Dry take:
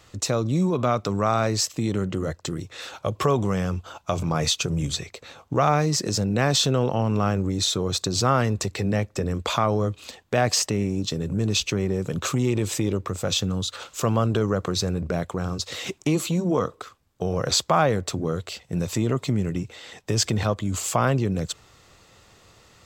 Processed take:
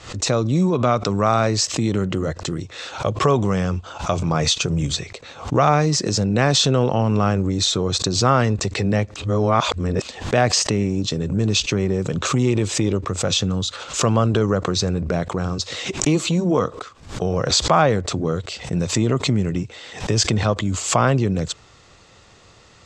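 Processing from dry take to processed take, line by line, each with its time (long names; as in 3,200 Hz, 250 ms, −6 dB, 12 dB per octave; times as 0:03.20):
0:09.16–0:10.02: reverse
whole clip: low-pass filter 7,900 Hz 24 dB per octave; background raised ahead of every attack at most 120 dB per second; level +4 dB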